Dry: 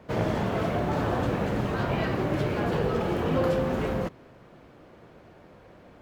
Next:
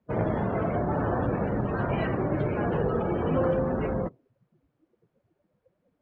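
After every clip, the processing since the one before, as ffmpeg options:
ffmpeg -i in.wav -af "afftdn=noise_reduction=27:noise_floor=-36" out.wav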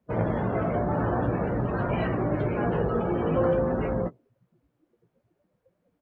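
ffmpeg -i in.wav -filter_complex "[0:a]asplit=2[link_01][link_02];[link_02]adelay=17,volume=-8dB[link_03];[link_01][link_03]amix=inputs=2:normalize=0" out.wav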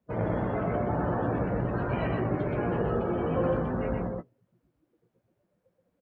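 ffmpeg -i in.wav -af "aecho=1:1:125:0.708,volume=-4dB" out.wav

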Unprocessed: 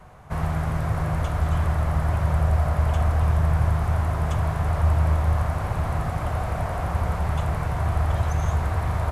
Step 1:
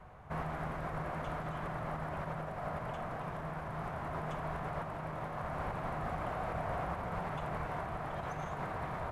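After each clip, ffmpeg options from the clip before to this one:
ffmpeg -i in.wav -af "bass=frequency=250:gain=-2,treble=frequency=4000:gain=-11,alimiter=limit=-19.5dB:level=0:latency=1:release=81,afftfilt=real='re*lt(hypot(re,im),0.282)':imag='im*lt(hypot(re,im),0.282)':win_size=1024:overlap=0.75,volume=-5.5dB" out.wav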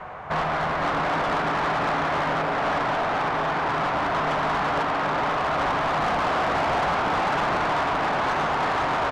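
ffmpeg -i in.wav -filter_complex "[0:a]adynamicsmooth=sensitivity=7:basefreq=4900,asplit=7[link_01][link_02][link_03][link_04][link_05][link_06][link_07];[link_02]adelay=498,afreqshift=130,volume=-4dB[link_08];[link_03]adelay=996,afreqshift=260,volume=-10.2dB[link_09];[link_04]adelay=1494,afreqshift=390,volume=-16.4dB[link_10];[link_05]adelay=1992,afreqshift=520,volume=-22.6dB[link_11];[link_06]adelay=2490,afreqshift=650,volume=-28.8dB[link_12];[link_07]adelay=2988,afreqshift=780,volume=-35dB[link_13];[link_01][link_08][link_09][link_10][link_11][link_12][link_13]amix=inputs=7:normalize=0,asplit=2[link_14][link_15];[link_15]highpass=frequency=720:poles=1,volume=20dB,asoftclip=type=tanh:threshold=-24dB[link_16];[link_14][link_16]amix=inputs=2:normalize=0,lowpass=frequency=7500:poles=1,volume=-6dB,volume=7.5dB" out.wav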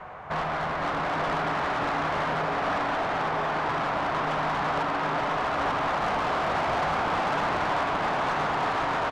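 ffmpeg -i in.wav -af "aecho=1:1:885:0.501,volume=-4dB" out.wav

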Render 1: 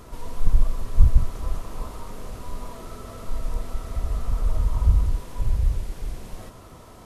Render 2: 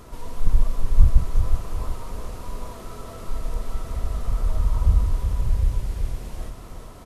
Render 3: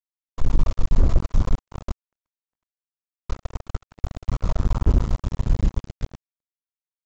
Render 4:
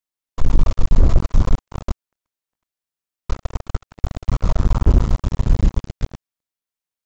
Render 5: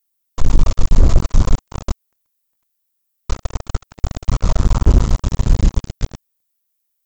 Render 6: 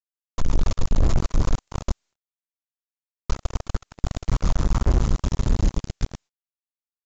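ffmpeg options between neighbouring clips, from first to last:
ffmpeg -i in.wav -af "aecho=1:1:372|744|1116|1488|1860:0.447|0.183|0.0751|0.0308|0.0126" out.wav
ffmpeg -i in.wav -af "aresample=16000,acrusher=bits=2:mix=0:aa=0.5,aresample=44100,agate=range=-33dB:threshold=-39dB:ratio=3:detection=peak,alimiter=level_in=5.5dB:limit=-1dB:release=50:level=0:latency=1,volume=-6dB" out.wav
ffmpeg -i in.wav -af "acontrast=47" out.wav
ffmpeg -i in.wav -af "aemphasis=mode=production:type=50fm,volume=2.5dB" out.wav
ffmpeg -i in.wav -af "agate=range=-33dB:threshold=-35dB:ratio=3:detection=peak,asoftclip=type=hard:threshold=-9.5dB,volume=-3dB" -ar 16000 -c:a pcm_mulaw out.wav

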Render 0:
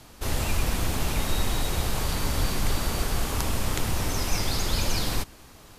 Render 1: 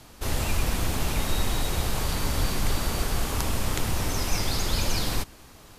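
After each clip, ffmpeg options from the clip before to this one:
ffmpeg -i in.wav -af anull out.wav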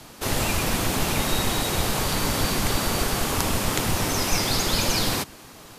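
ffmpeg -i in.wav -filter_complex "[0:a]acrossover=split=110[link_01][link_02];[link_01]aeval=exprs='max(val(0),0)':channel_layout=same[link_03];[link_02]acontrast=49[link_04];[link_03][link_04]amix=inputs=2:normalize=0" out.wav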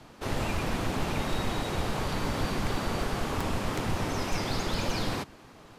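ffmpeg -i in.wav -af "aemphasis=mode=reproduction:type=75kf,aeval=exprs='0.168*(abs(mod(val(0)/0.168+3,4)-2)-1)':channel_layout=same,volume=-4.5dB" out.wav

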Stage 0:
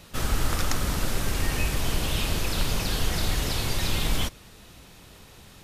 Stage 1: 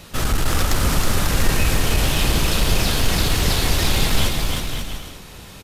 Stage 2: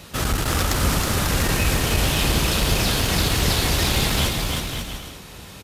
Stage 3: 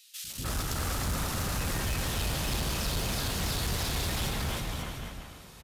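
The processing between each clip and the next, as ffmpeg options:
ffmpeg -i in.wav -filter_complex "[0:a]aeval=exprs='0.282*sin(PI/2*1.78*val(0)/0.282)':channel_layout=same,asplit=2[link_01][link_02];[link_02]aecho=0:1:320|544|700.8|810.6|887.4:0.631|0.398|0.251|0.158|0.1[link_03];[link_01][link_03]amix=inputs=2:normalize=0,volume=-1.5dB" out.wav
ffmpeg -i in.wav -af "highpass=44" out.wav
ffmpeg -i in.wav -filter_complex "[0:a]acrossover=split=360|2700[link_01][link_02][link_03];[link_01]adelay=240[link_04];[link_02]adelay=300[link_05];[link_04][link_05][link_03]amix=inputs=3:normalize=0,volume=17dB,asoftclip=hard,volume=-17dB,volume=-9dB" out.wav

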